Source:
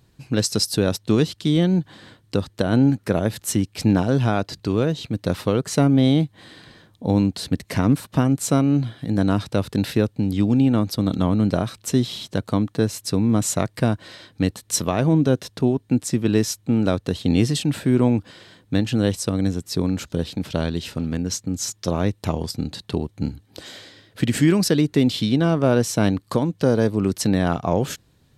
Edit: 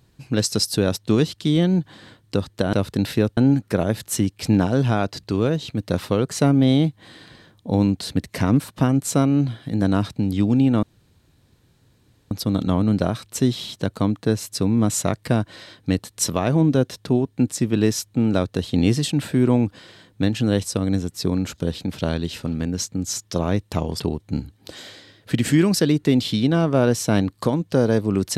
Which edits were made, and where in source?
9.52–10.16 s: move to 2.73 s
10.83 s: insert room tone 1.48 s
22.52–22.89 s: delete

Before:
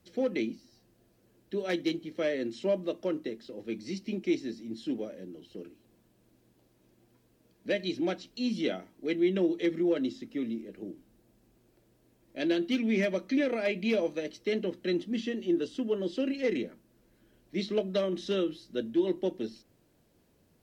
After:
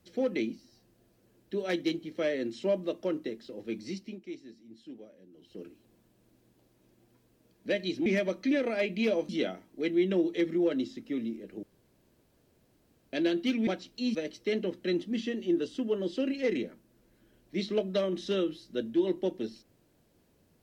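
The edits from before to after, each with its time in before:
3.87–5.64 s: dip -13 dB, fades 0.33 s
8.06–8.54 s: swap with 12.92–14.15 s
10.88–12.38 s: room tone

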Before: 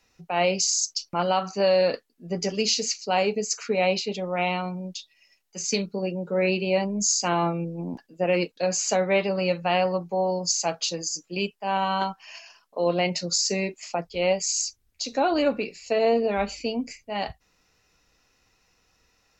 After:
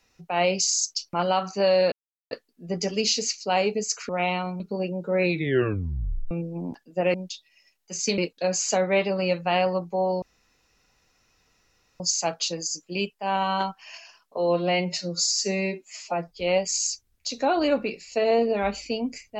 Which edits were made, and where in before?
1.92 s: insert silence 0.39 s
3.70–4.28 s: delete
4.79–5.83 s: move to 8.37 s
6.45 s: tape stop 1.09 s
10.41 s: insert room tone 1.78 s
12.78–14.11 s: stretch 1.5×

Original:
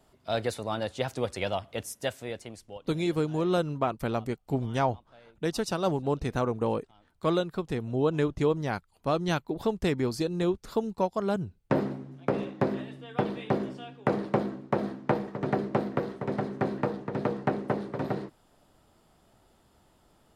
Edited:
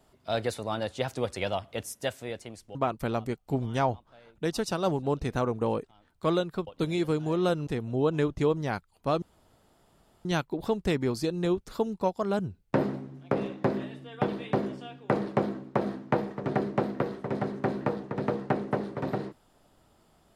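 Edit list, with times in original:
2.75–3.75 s: move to 7.67 s
9.22 s: insert room tone 1.03 s

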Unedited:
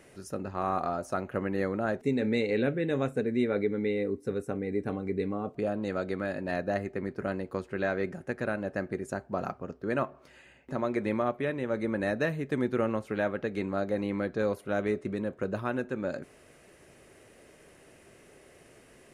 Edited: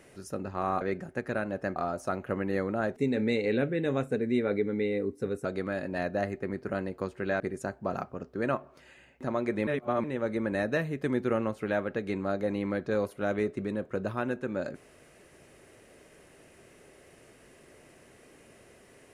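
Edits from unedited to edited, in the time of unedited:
4.50–5.98 s: delete
7.93–8.88 s: move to 0.81 s
11.15–11.52 s: reverse

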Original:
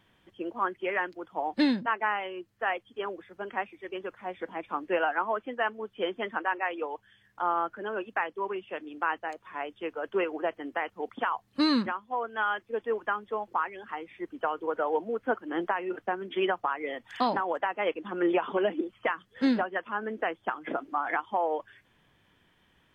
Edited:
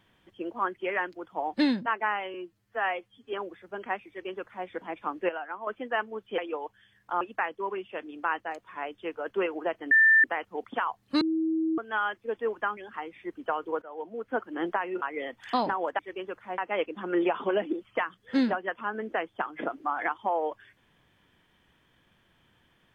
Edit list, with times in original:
2.34–3.00 s: stretch 1.5×
3.75–4.34 s: copy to 17.66 s
4.96–5.34 s: gain -9 dB
6.05–6.67 s: delete
7.50–7.99 s: delete
10.69 s: add tone 1.78 kHz -15.5 dBFS 0.33 s
11.66–12.23 s: bleep 321 Hz -24 dBFS
13.22–13.72 s: delete
14.77–15.44 s: fade in, from -21 dB
15.97–16.69 s: delete

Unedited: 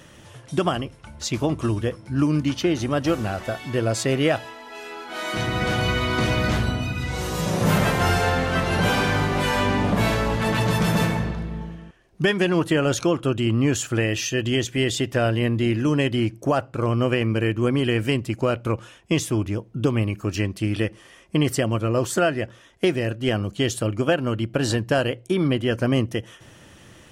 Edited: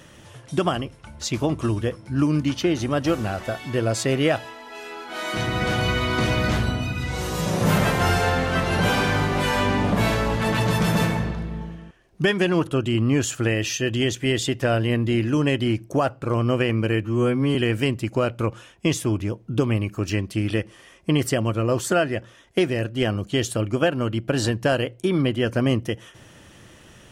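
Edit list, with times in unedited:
12.67–13.19 s: delete
17.55–17.81 s: stretch 2×

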